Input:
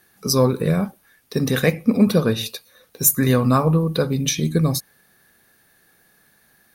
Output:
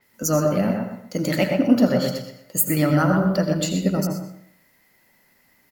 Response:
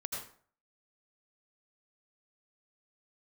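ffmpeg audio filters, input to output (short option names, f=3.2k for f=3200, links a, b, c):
-filter_complex "[0:a]bandreject=f=380:w=12,asetrate=52038,aresample=44100,asplit=2[a][b];[b]adelay=124,lowpass=f=2.2k:p=1,volume=-3.5dB,asplit=2[c][d];[d]adelay=124,lowpass=f=2.2k:p=1,volume=0.28,asplit=2[e][f];[f]adelay=124,lowpass=f=2.2k:p=1,volume=0.28,asplit=2[g][h];[h]adelay=124,lowpass=f=2.2k:p=1,volume=0.28[i];[a][c][e][g][i]amix=inputs=5:normalize=0,asplit=2[j][k];[1:a]atrim=start_sample=2205[l];[k][l]afir=irnorm=-1:irlink=0,volume=-3dB[m];[j][m]amix=inputs=2:normalize=0,adynamicequalizer=threshold=0.0178:dfrequency=5300:dqfactor=0.7:tfrequency=5300:tqfactor=0.7:attack=5:release=100:ratio=0.375:range=2.5:mode=cutabove:tftype=highshelf,volume=-7dB"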